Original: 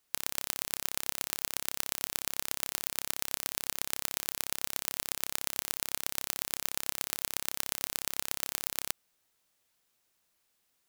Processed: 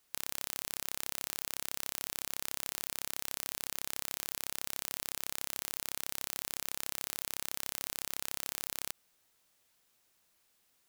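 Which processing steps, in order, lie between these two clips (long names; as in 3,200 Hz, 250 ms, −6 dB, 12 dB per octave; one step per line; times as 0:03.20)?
brickwall limiter −12 dBFS, peak gain reduction 10.5 dB
level +3 dB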